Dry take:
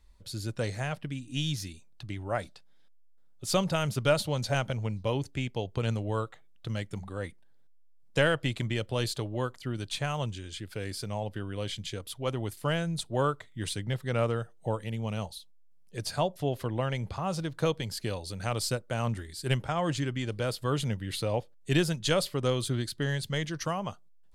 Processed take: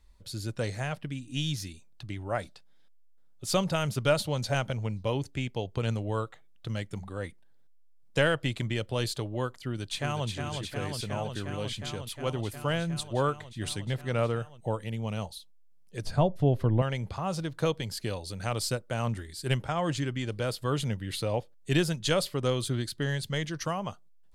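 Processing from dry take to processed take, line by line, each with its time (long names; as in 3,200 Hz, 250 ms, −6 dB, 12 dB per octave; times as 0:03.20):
0:09.61–0:10.28: delay throw 360 ms, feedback 85%, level −5 dB
0:16.04–0:16.82: spectral tilt −3 dB per octave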